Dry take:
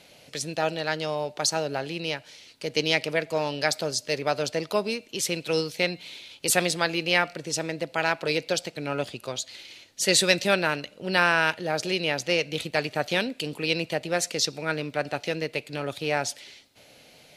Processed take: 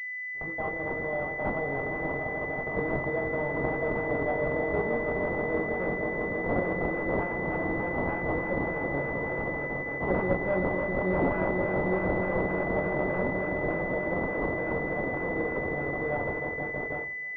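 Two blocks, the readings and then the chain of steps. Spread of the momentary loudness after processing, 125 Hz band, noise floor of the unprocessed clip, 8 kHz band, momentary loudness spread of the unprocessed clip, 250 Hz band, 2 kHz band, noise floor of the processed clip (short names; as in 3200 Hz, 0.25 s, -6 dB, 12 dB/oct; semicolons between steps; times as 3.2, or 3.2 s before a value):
4 LU, +1.0 dB, -54 dBFS, under -40 dB, 10 LU, +1.0 dB, -2.0 dB, -35 dBFS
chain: low shelf 290 Hz -4 dB; on a send: swelling echo 0.161 s, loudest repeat 5, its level -9.5 dB; on the sum: gate with hold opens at -18 dBFS; in parallel at -5.5 dB: wrapped overs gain 17.5 dB; on the sum: flutter echo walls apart 3.7 m, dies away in 0.28 s; decimation with a swept rate 16×, swing 100% 3.4 Hz; pulse-width modulation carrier 2000 Hz; gain -7.5 dB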